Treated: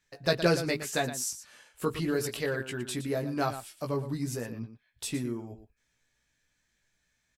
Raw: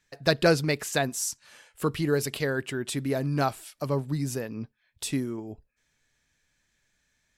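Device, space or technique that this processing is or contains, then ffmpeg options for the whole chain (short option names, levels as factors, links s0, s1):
slapback doubling: -filter_complex "[0:a]asplit=3[s0][s1][s2];[s1]adelay=17,volume=0.631[s3];[s2]adelay=116,volume=0.282[s4];[s0][s3][s4]amix=inputs=3:normalize=0,volume=0.596"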